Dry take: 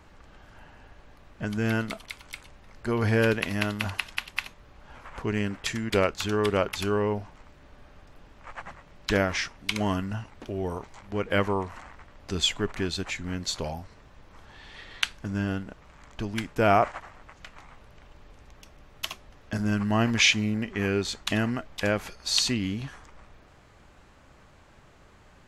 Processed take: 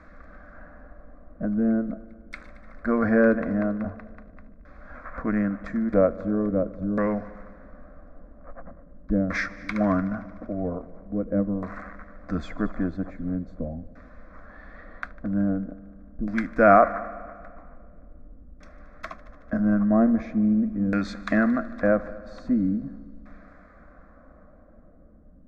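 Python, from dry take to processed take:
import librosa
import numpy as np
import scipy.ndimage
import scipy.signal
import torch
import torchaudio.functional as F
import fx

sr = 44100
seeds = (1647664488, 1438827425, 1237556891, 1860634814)

y = fx.filter_lfo_lowpass(x, sr, shape='saw_down', hz=0.43, low_hz=270.0, high_hz=2800.0, q=0.84)
y = fx.fixed_phaser(y, sr, hz=590.0, stages=8)
y = fx.echo_heads(y, sr, ms=75, heads='all three', feedback_pct=58, wet_db=-24.0)
y = y * librosa.db_to_amplitude(7.5)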